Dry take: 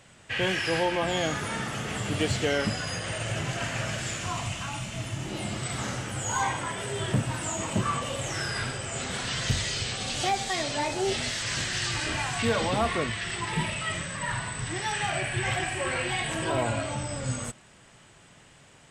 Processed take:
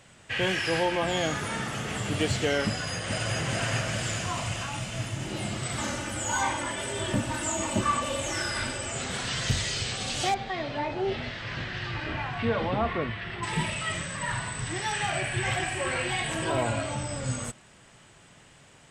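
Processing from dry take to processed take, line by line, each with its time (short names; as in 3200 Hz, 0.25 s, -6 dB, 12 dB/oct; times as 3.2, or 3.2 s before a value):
2.68–3.37 echo throw 0.42 s, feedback 70%, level -2 dB
5.77–8.92 comb 3.4 ms
10.34–13.43 air absorption 340 m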